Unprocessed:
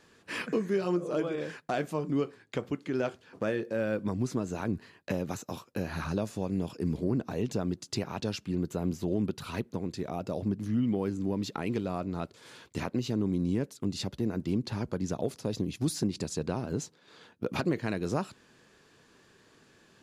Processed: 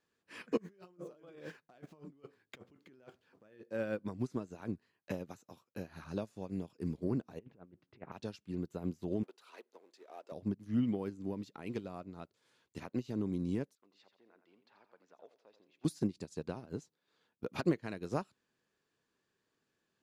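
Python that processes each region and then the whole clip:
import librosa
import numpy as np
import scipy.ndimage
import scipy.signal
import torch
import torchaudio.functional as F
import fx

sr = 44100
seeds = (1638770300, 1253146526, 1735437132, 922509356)

y = fx.chain(x, sr, fx.median_filter(points=5),
    fx.over_compress(threshold_db=-38.0, ratio=-1.0), at=(0.57, 3.61))
y = fx.chain(y, sr, fx.lowpass(hz=2400.0, slope=24),
    fx.over_compress(threshold_db=-35.0, ratio=-0.5),
    fx.doppler_dist(depth_ms=0.16), at=(7.39, 8.12))
y = fx.chain(y, sr, fx.law_mismatch(coded='mu'),
    fx.highpass(hz=400.0, slope=24),
    fx.high_shelf(hz=11000.0, db=-10.0), at=(9.23, 10.32))
y = fx.chain(y, sr, fx.bandpass_edges(low_hz=700.0, high_hz=2700.0),
    fx.echo_feedback(ms=86, feedback_pct=34, wet_db=-10.0), at=(13.75, 15.85))
y = fx.low_shelf(y, sr, hz=130.0, db=-3.5)
y = fx.upward_expand(y, sr, threshold_db=-40.0, expansion=2.5)
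y = y * 10.0 ** (1.0 / 20.0)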